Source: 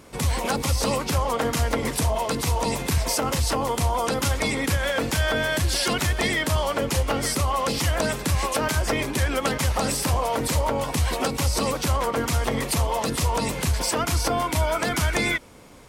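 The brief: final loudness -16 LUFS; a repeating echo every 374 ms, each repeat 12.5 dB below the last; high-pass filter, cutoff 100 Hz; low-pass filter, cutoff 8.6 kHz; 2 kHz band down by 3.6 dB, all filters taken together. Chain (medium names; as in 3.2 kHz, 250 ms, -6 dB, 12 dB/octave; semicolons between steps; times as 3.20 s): high-pass 100 Hz; low-pass 8.6 kHz; peaking EQ 2 kHz -4.5 dB; feedback delay 374 ms, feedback 24%, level -12.5 dB; trim +9.5 dB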